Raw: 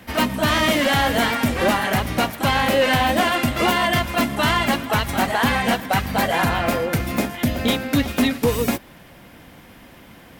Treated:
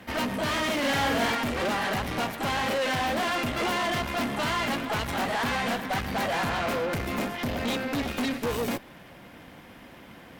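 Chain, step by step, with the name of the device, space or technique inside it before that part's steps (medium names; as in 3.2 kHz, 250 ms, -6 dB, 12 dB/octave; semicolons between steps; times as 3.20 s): tube preamp driven hard (valve stage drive 27 dB, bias 0.7; bass shelf 110 Hz -7 dB; treble shelf 5.8 kHz -8 dB); 0.78–1.35 s: doubling 47 ms -3 dB; trim +2.5 dB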